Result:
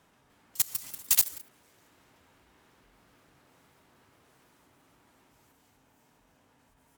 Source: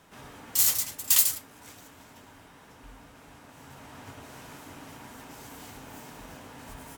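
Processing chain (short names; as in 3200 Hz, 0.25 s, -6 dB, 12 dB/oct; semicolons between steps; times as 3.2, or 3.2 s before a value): level quantiser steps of 20 dB; echoes that change speed 0.301 s, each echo +5 st, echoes 3; added harmonics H 7 -22 dB, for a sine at -7 dBFS; gain +1 dB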